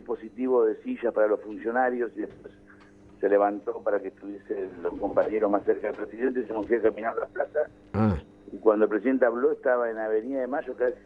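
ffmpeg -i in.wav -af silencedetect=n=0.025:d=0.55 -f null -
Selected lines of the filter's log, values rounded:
silence_start: 2.46
silence_end: 3.23 | silence_duration: 0.77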